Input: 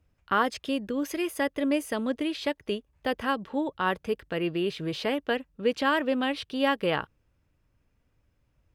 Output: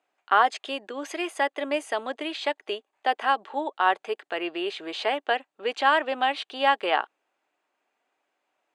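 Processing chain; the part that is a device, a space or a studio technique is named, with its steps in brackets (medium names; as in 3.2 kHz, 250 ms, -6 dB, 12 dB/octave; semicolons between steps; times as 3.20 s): phone speaker on a table (cabinet simulation 400–8300 Hz, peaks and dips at 500 Hz -8 dB, 760 Hz +8 dB, 5.4 kHz -9 dB); trim +4 dB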